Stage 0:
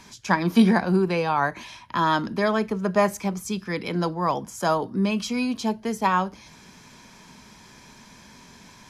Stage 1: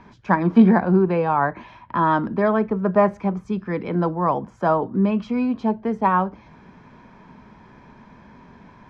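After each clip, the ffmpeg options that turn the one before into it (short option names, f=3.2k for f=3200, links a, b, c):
-af "lowpass=1.4k,volume=4dB"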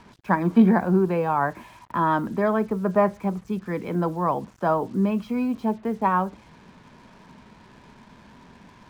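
-af "acrusher=bits=7:mix=0:aa=0.5,volume=-3dB"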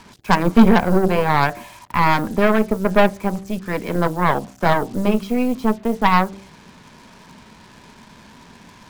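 -af "highshelf=f=3.6k:g=10.5,bandreject=f=64.8:t=h:w=4,bandreject=f=129.6:t=h:w=4,bandreject=f=194.4:t=h:w=4,bandreject=f=259.2:t=h:w=4,bandreject=f=324:t=h:w=4,bandreject=f=388.8:t=h:w=4,bandreject=f=453.6:t=h:w=4,bandreject=f=518.4:t=h:w=4,bandreject=f=583.2:t=h:w=4,bandreject=f=648:t=h:w=4,bandreject=f=712.8:t=h:w=4,bandreject=f=777.6:t=h:w=4,aeval=exprs='0.473*(cos(1*acos(clip(val(0)/0.473,-1,1)))-cos(1*PI/2))+0.0944*(cos(6*acos(clip(val(0)/0.473,-1,1)))-cos(6*PI/2))':c=same,volume=4dB"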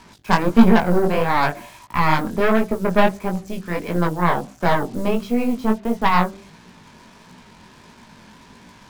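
-af "flanger=delay=16.5:depth=7.3:speed=1.5,volume=1.5dB"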